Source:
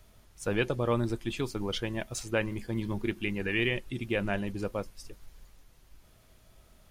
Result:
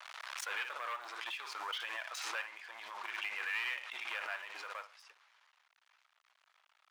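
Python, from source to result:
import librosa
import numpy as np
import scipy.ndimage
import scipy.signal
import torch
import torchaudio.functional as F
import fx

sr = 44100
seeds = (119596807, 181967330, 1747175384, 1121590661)

y = fx.room_flutter(x, sr, wall_m=9.9, rt60_s=0.23)
y = 10.0 ** (-30.5 / 20.0) * np.tanh(y / 10.0 ** (-30.5 / 20.0))
y = scipy.signal.sosfilt(scipy.signal.butter(2, 2800.0, 'lowpass', fs=sr, output='sos'), y)
y = np.sign(y) * np.maximum(np.abs(y) - 10.0 ** (-56.5 / 20.0), 0.0)
y = scipy.signal.sosfilt(scipy.signal.butter(4, 960.0, 'highpass', fs=sr, output='sos'), y)
y = fx.pre_swell(y, sr, db_per_s=28.0)
y = y * 10.0 ** (3.5 / 20.0)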